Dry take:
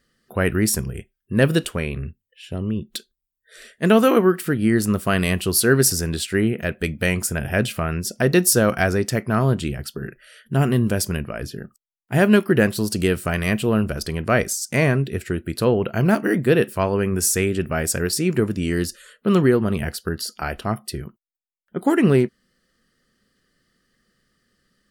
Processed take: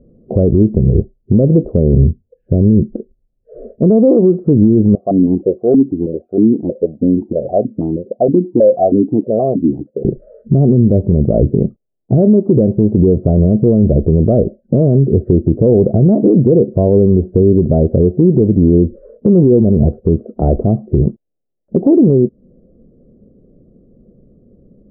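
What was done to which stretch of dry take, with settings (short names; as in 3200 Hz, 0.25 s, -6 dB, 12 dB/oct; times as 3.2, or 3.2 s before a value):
4.95–10.05 vowel sequencer 6.3 Hz
whole clip: steep low-pass 600 Hz 36 dB/oct; compressor 3:1, threshold -28 dBFS; maximiser +25 dB; gain -1 dB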